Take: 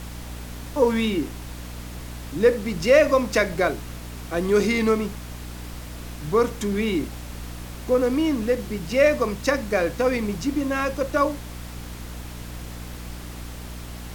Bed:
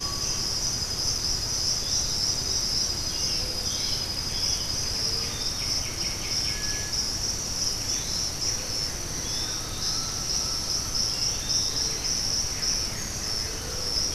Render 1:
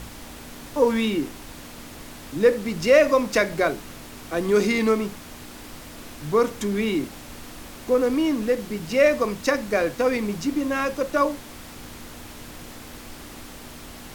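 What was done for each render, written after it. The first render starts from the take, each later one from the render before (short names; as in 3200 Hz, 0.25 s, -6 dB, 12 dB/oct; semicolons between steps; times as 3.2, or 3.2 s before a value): de-hum 60 Hz, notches 3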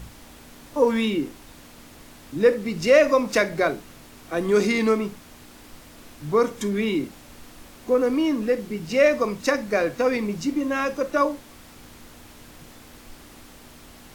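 noise print and reduce 6 dB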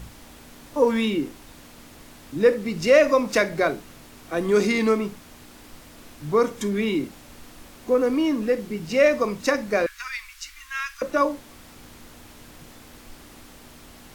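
9.86–11.02 inverse Chebyshev band-stop 120–610 Hz, stop band 50 dB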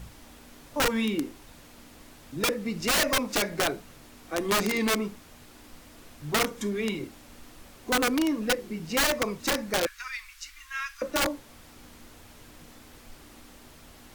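flange 1.3 Hz, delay 1.2 ms, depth 3.2 ms, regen -61%; wrapped overs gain 18.5 dB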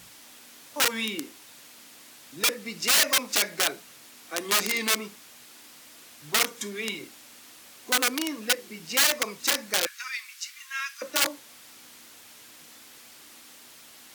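Bessel high-pass 200 Hz, order 2; tilt shelf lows -6.5 dB, about 1400 Hz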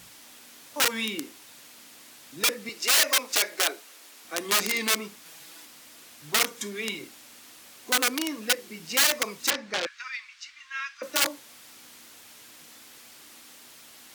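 2.69–4.25 HPF 300 Hz 24 dB/oct; 5.25–5.65 comb 6.1 ms, depth 94%; 9.5–11.03 air absorption 140 m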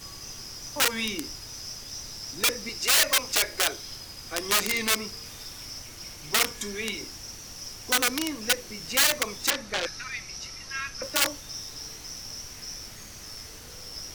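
add bed -13 dB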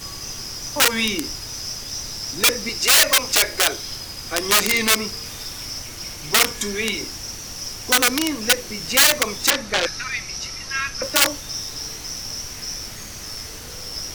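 gain +8.5 dB; limiter -1 dBFS, peak gain reduction 2.5 dB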